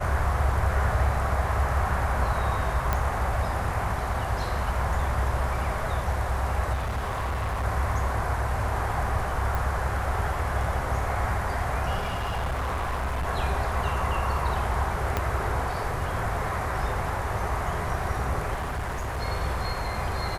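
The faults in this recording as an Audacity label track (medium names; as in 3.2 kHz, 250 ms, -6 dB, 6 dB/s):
2.930000	2.930000	pop -11 dBFS
6.730000	7.650000	clipped -25 dBFS
9.550000	9.550000	pop
12.000000	13.280000	clipped -25 dBFS
15.170000	15.170000	pop -11 dBFS
18.550000	19.230000	clipped -26.5 dBFS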